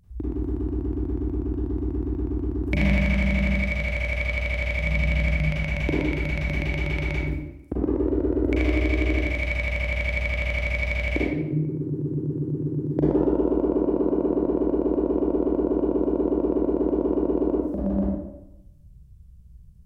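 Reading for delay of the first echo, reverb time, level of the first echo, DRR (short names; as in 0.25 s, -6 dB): none, 0.90 s, none, -6.5 dB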